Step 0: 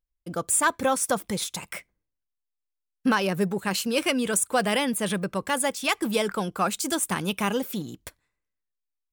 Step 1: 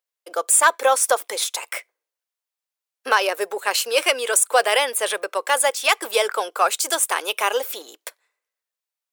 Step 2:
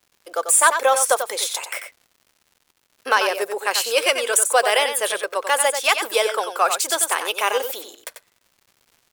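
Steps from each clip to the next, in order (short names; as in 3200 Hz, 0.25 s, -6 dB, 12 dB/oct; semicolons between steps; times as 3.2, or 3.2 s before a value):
steep high-pass 440 Hz 36 dB/oct; gain +7 dB
crackle 190/s -43 dBFS; echo 92 ms -8 dB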